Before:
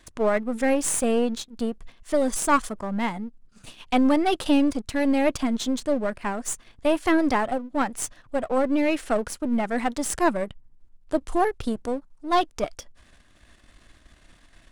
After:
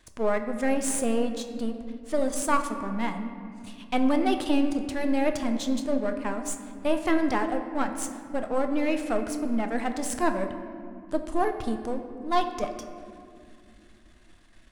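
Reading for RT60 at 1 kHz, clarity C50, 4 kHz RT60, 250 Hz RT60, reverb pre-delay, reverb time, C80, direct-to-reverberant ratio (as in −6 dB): 2.1 s, 8.5 dB, 1.3 s, 3.9 s, 8 ms, 2.4 s, 9.5 dB, 6.0 dB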